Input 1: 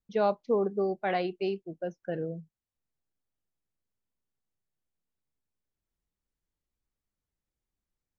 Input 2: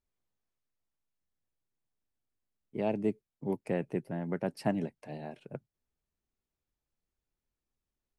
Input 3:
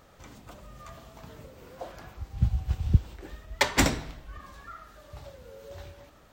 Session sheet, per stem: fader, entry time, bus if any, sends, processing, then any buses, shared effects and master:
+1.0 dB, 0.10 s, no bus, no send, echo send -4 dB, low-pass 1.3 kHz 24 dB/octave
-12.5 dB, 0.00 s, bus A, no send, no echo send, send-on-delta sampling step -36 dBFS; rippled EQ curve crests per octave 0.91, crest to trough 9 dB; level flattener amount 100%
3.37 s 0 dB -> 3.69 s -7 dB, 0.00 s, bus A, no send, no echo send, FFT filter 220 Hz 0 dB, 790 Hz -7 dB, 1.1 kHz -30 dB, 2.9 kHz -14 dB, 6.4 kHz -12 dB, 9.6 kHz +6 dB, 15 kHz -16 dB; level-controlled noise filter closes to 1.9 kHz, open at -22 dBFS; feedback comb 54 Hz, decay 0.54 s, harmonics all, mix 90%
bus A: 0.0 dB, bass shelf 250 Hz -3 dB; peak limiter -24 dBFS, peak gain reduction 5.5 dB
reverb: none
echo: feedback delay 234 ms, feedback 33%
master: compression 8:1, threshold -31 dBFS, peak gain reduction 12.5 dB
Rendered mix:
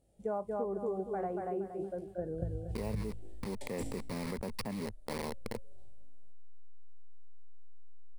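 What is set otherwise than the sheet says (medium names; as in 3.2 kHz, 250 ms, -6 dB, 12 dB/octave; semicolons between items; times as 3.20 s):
stem 1 +1.0 dB -> -5.5 dB; stem 3: missing level-controlled noise filter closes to 1.9 kHz, open at -22 dBFS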